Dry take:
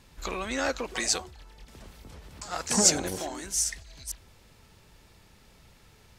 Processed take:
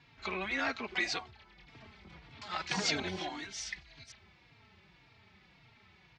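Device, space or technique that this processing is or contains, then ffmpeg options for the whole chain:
barber-pole flanger into a guitar amplifier: -filter_complex "[0:a]asettb=1/sr,asplit=3[link_01][link_02][link_03];[link_01]atrim=end=2.324[link_04];[link_02]atrim=start=2.32:end=3.74,asetpts=PTS-STARTPTS,afade=type=in:duration=0.004:curve=qsin,afade=type=out:start_time=1.416:duration=0.004:curve=qsin,equalizer=frequency=3500:width=1.8:gain=6[link_05];[link_03]atrim=start=3.736[link_06];[link_04][link_05]acrossfade=duration=0.004:curve1=hsin:curve2=qsin[link_07];[link_07][link_06]acrossfade=duration=0.004:curve1=qsin:curve2=hsin,asplit=2[link_08][link_09];[link_09]adelay=3.7,afreqshift=-1.8[link_10];[link_08][link_10]amix=inputs=2:normalize=1,asoftclip=type=tanh:threshold=-15dB,highpass=97,equalizer=frequency=270:width_type=q:width=4:gain=-4,equalizer=frequency=510:width_type=q:width=4:gain=-10,equalizer=frequency=2200:width_type=q:width=4:gain=7,lowpass=frequency=4400:width=0.5412,lowpass=frequency=4400:width=1.3066"

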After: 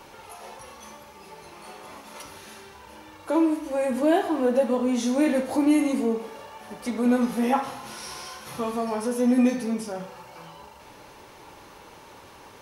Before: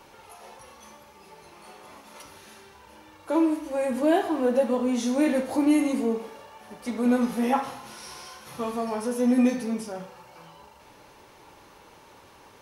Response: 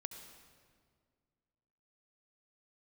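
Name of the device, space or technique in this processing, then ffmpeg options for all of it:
parallel compression: -filter_complex "[0:a]asplit=2[link_01][link_02];[link_02]acompressor=threshold=-37dB:ratio=6,volume=-3.5dB[link_03];[link_01][link_03]amix=inputs=2:normalize=0"

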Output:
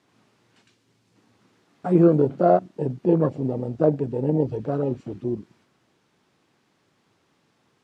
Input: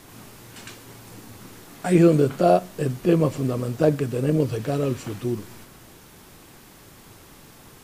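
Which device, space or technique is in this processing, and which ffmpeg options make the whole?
over-cleaned archive recording: -filter_complex "[0:a]highpass=130,lowpass=5300,afwtdn=0.0398,asettb=1/sr,asplit=3[link_01][link_02][link_03];[link_01]atrim=end=0.624[link_04];[link_02]atrim=start=0.62:end=1.16,asetpts=PTS-STARTPTS,afade=type=in:duration=0.004:curve=qsin,afade=type=out:start_time=0.536:duration=0.004:curve=qsin,equalizer=frequency=920:width=0.41:gain=-8[link_05];[link_03]atrim=start=1.156[link_06];[link_04][link_05]acrossfade=duration=0.004:curve1=hsin:curve2=qsin[link_07];[link_07][link_06]acrossfade=duration=0.004:curve1=qsin:curve2=hsin"

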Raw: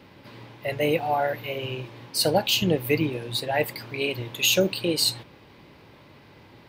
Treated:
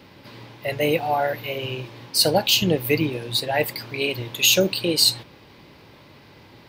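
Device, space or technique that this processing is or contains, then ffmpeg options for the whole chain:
presence and air boost: -af "equalizer=frequency=4900:width_type=o:width=1.1:gain=4,highshelf=frequency=12000:gain=5.5,volume=2dB"

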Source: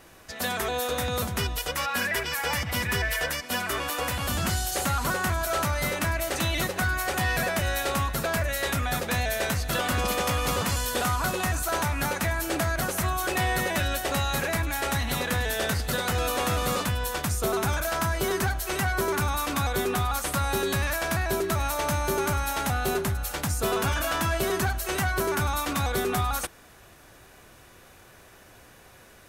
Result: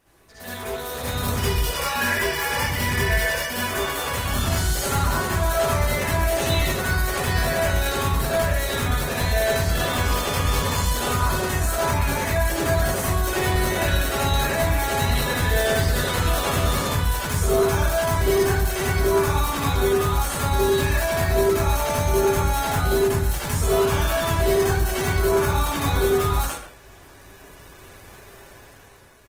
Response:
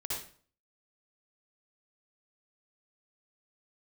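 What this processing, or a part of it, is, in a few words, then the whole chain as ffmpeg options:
speakerphone in a meeting room: -filter_complex "[1:a]atrim=start_sample=2205[link_01];[0:a][link_01]afir=irnorm=-1:irlink=0,asplit=2[link_02][link_03];[link_03]adelay=130,highpass=300,lowpass=3400,asoftclip=type=hard:threshold=-19dB,volume=-10dB[link_04];[link_02][link_04]amix=inputs=2:normalize=0,dynaudnorm=framelen=210:gausssize=9:maxgain=11dB,volume=-7dB" -ar 48000 -c:a libopus -b:a 20k

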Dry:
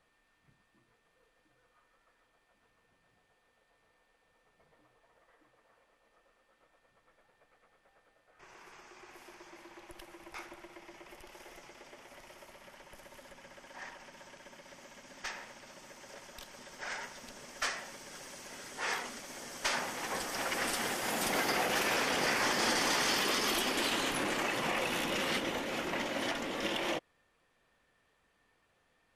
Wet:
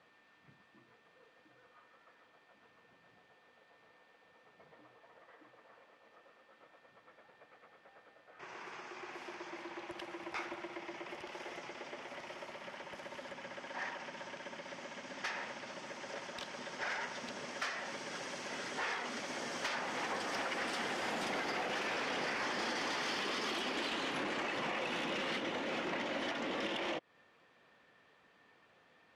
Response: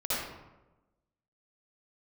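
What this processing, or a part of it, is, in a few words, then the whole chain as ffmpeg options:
AM radio: -af "highpass=140,lowpass=4500,acompressor=threshold=-41dB:ratio=6,asoftclip=type=tanh:threshold=-36dB,volume=7dB"

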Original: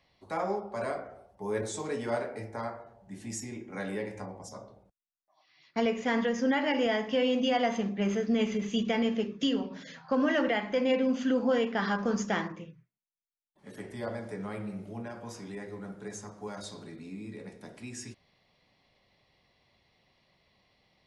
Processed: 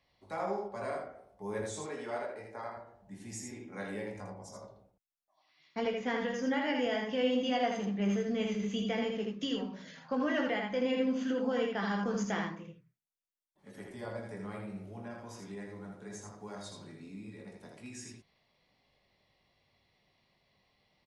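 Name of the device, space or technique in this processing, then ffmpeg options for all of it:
slapback doubling: -filter_complex "[0:a]asplit=3[link_01][link_02][link_03];[link_02]adelay=20,volume=-7dB[link_04];[link_03]adelay=80,volume=-4dB[link_05];[link_01][link_04][link_05]amix=inputs=3:normalize=0,asettb=1/sr,asplit=3[link_06][link_07][link_08];[link_06]atrim=end=1.864[link_09];[link_07]atrim=start=1.86:end=2.77,asetpts=PTS-STARTPTS,afade=type=in:duration=0.004:curve=qsin,afade=type=out:start_time=0.906:duration=0.004:curve=qsin,bass=frequency=250:gain=-10,treble=frequency=4000:gain=-5[link_10];[link_08]atrim=start=2.766[link_11];[link_09][link_10]acrossfade=duration=0.004:curve1=hsin:curve2=qsin[link_12];[link_12][link_11]acrossfade=duration=0.004:curve1=qsin:curve2=hsin,asettb=1/sr,asplit=3[link_13][link_14][link_15];[link_13]atrim=end=5.774[link_16];[link_14]atrim=start=5.77:end=6.21,asetpts=PTS-STARTPTS,afade=type=in:duration=0.004:curve=qsin,afade=type=out:start_time=0.436:duration=0.004:curve=qsin,lowpass=5900[link_17];[link_15]atrim=start=6.206[link_18];[link_16][link_17]acrossfade=duration=0.004:curve1=hsin:curve2=qsin[link_19];[link_19][link_18]acrossfade=duration=0.004:curve1=qsin:curve2=hsin,volume=-6dB"

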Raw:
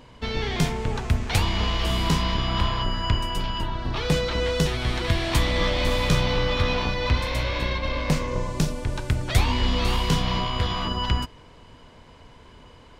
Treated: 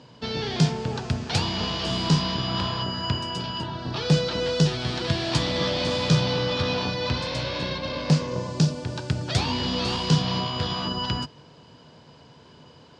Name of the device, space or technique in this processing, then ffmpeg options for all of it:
car door speaker: -af "highpass=87,highpass=91,equalizer=frequency=150:width_type=q:width=4:gain=7,equalizer=frequency=1100:width_type=q:width=4:gain=-4,equalizer=frequency=2100:width_type=q:width=4:gain=-8,equalizer=frequency=4800:width_type=q:width=4:gain=7,lowpass=frequency=7500:width=0.5412,lowpass=frequency=7500:width=1.3066"

